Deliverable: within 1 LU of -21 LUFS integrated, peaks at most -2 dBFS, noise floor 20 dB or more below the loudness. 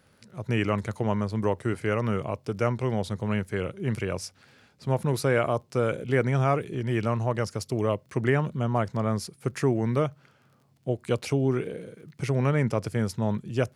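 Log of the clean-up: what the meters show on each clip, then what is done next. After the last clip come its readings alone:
tick rate 25 per s; loudness -27.5 LUFS; peak level -9.5 dBFS; loudness target -21.0 LUFS
-> de-click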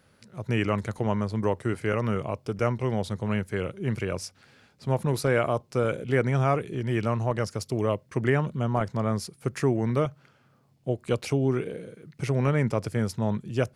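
tick rate 0 per s; loudness -27.5 LUFS; peak level -9.5 dBFS; loudness target -21.0 LUFS
-> trim +6.5 dB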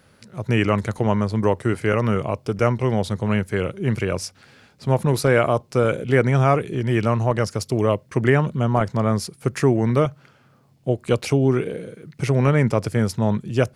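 loudness -21.0 LUFS; peak level -3.0 dBFS; noise floor -56 dBFS

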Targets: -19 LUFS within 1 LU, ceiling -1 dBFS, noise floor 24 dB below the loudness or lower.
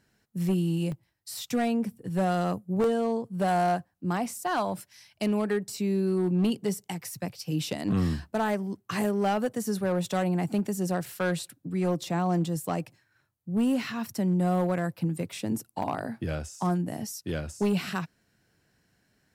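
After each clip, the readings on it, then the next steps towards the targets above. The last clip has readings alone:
clipped samples 1.6%; clipping level -20.0 dBFS; dropouts 4; longest dropout 1.4 ms; loudness -29.0 LUFS; peak level -20.0 dBFS; loudness target -19.0 LUFS
-> clip repair -20 dBFS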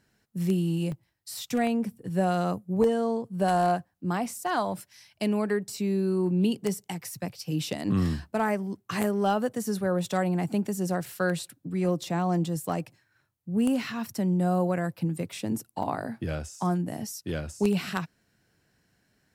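clipped samples 0.0%; dropouts 4; longest dropout 1.4 ms
-> interpolate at 0.92/2.84/11.12/15.83 s, 1.4 ms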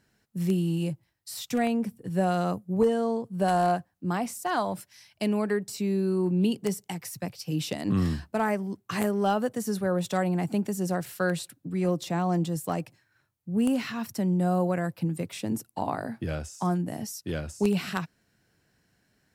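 dropouts 0; loudness -28.5 LUFS; peak level -11.0 dBFS; loudness target -19.0 LUFS
-> trim +9.5 dB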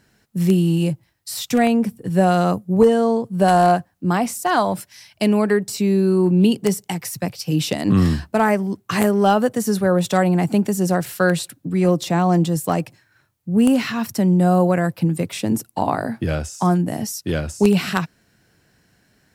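loudness -19.0 LUFS; peak level -1.5 dBFS; noise floor -63 dBFS

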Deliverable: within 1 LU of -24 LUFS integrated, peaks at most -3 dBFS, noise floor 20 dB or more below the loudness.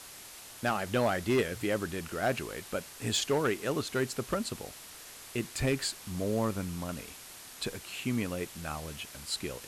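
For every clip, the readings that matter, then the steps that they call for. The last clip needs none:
clipped samples 0.7%; clipping level -21.5 dBFS; noise floor -49 dBFS; noise floor target -53 dBFS; loudness -33.0 LUFS; peak level -21.5 dBFS; loudness target -24.0 LUFS
-> clip repair -21.5 dBFS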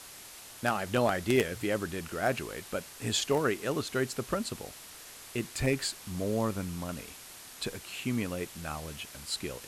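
clipped samples 0.0%; noise floor -49 dBFS; noise floor target -53 dBFS
-> noise reduction 6 dB, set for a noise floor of -49 dBFS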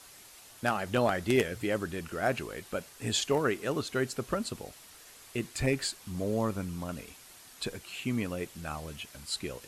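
noise floor -53 dBFS; loudness -32.5 LUFS; peak level -12.5 dBFS; loudness target -24.0 LUFS
-> trim +8.5 dB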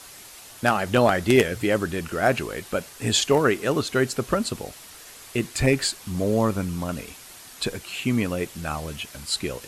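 loudness -24.0 LUFS; peak level -4.0 dBFS; noise floor -45 dBFS

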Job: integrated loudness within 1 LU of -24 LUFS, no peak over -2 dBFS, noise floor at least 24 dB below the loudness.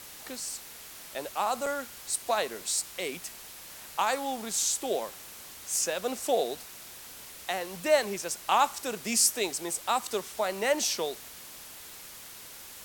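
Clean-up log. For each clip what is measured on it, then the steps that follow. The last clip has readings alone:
dropouts 1; longest dropout 4.4 ms; noise floor -46 dBFS; noise floor target -54 dBFS; loudness -29.5 LUFS; peak level -10.0 dBFS; loudness target -24.0 LUFS
-> interpolate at 1.66 s, 4.4 ms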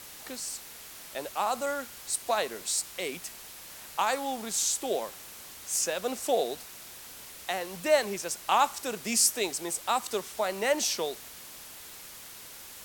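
dropouts 0; noise floor -46 dBFS; noise floor target -54 dBFS
-> noise print and reduce 8 dB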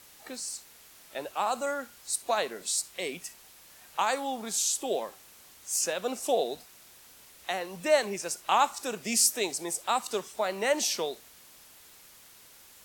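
noise floor -54 dBFS; loudness -29.5 LUFS; peak level -10.0 dBFS; loudness target -24.0 LUFS
-> trim +5.5 dB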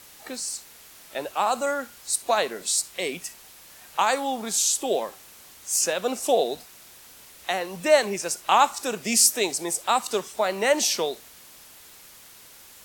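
loudness -24.0 LUFS; peak level -4.5 dBFS; noise floor -49 dBFS

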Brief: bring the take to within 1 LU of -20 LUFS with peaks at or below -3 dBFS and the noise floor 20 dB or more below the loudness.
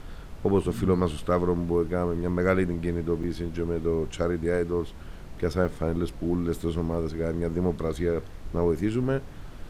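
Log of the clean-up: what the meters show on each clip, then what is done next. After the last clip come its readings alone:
dropouts 2; longest dropout 4.9 ms; noise floor -41 dBFS; noise floor target -48 dBFS; loudness -27.5 LUFS; peak level -11.0 dBFS; loudness target -20.0 LUFS
-> interpolate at 3.23/5.65 s, 4.9 ms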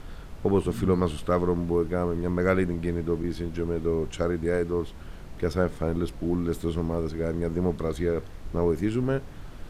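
dropouts 0; noise floor -41 dBFS; noise floor target -48 dBFS
-> noise print and reduce 7 dB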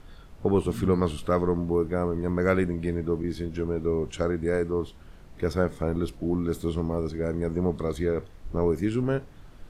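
noise floor -48 dBFS; loudness -27.5 LUFS; peak level -11.5 dBFS; loudness target -20.0 LUFS
-> trim +7.5 dB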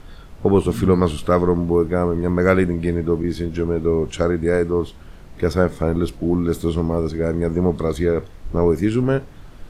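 loudness -20.0 LUFS; peak level -4.0 dBFS; noise floor -40 dBFS

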